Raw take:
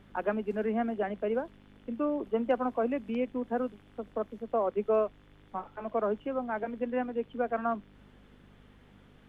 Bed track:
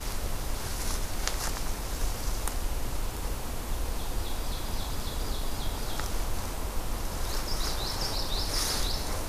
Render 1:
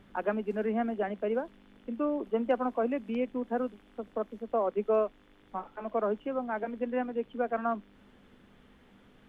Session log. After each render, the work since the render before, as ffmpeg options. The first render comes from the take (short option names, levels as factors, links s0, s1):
-af "bandreject=f=50:t=h:w=4,bandreject=f=100:t=h:w=4,bandreject=f=150:t=h:w=4"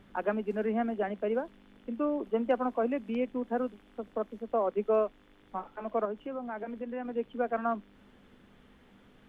-filter_complex "[0:a]asettb=1/sr,asplit=3[s0][s1][s2];[s0]atrim=end=6.054[s3];[s1]atrim=start=6.05:end=7.05,asetpts=PTS-STARTPTS,afade=t=in:d=0.004:c=qsin,afade=t=out:st=0.996:d=0.004:c=qsin,acompressor=threshold=0.0178:ratio=2.5:attack=3.2:release=140:knee=1:detection=peak[s4];[s2]atrim=start=7.046[s5];[s3][s4]acrossfade=d=0.004:c1=hsin:c2=qsin[s6];[s6][s5]acrossfade=d=0.004:c1=qsin:c2=hsin"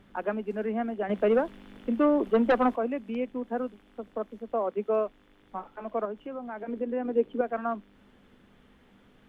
-filter_complex "[0:a]asettb=1/sr,asplit=3[s0][s1][s2];[s0]atrim=end=1.094[s3];[s1]atrim=start=1.09:end=2.76,asetpts=PTS-STARTPTS,afade=t=in:d=0.004:c=qsin,afade=t=out:st=1.666:d=0.004:c=qsin,aeval=exprs='0.15*sin(PI/2*1.78*val(0)/0.15)':c=same[s4];[s2]atrim=start=2.756[s5];[s3][s4]acrossfade=d=0.004:c1=hsin:c2=qsin[s6];[s6][s5]acrossfade=d=0.004:c1=qsin:c2=hsin,asettb=1/sr,asplit=3[s7][s8][s9];[s7]atrim=end=4.644[s10];[s8]atrim=start=4.64:end=5.06,asetpts=PTS-STARTPTS,afade=t=in:d=0.004:c=qsin,afade=t=out:st=0.416:d=0.004:c=qsin,highpass=60[s11];[s9]atrim=start=5.056[s12];[s10][s11]acrossfade=d=0.004:c1=hsin:c2=qsin[s13];[s13][s12]acrossfade=d=0.004:c1=qsin:c2=hsin,asettb=1/sr,asplit=3[s14][s15][s16];[s14]atrim=end=6.684[s17];[s15]atrim=start=6.68:end=7.41,asetpts=PTS-STARTPTS,afade=t=in:d=0.004:c=qsin,afade=t=out:st=0.726:d=0.004:c=qsin,equalizer=f=370:t=o:w=1.3:g=11[s18];[s16]atrim=start=7.406[s19];[s17][s18]acrossfade=d=0.004:c1=hsin:c2=qsin[s20];[s20][s19]acrossfade=d=0.004:c1=qsin:c2=hsin"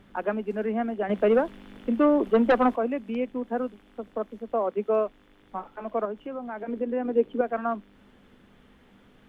-af "volume=1.33"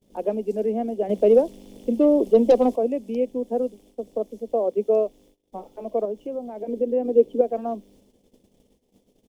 -af "agate=range=0.0316:threshold=0.002:ratio=16:detection=peak,firequalizer=gain_entry='entry(170,0);entry(500,7);entry(1400,-22);entry(2200,-9);entry(5400,13)':delay=0.05:min_phase=1"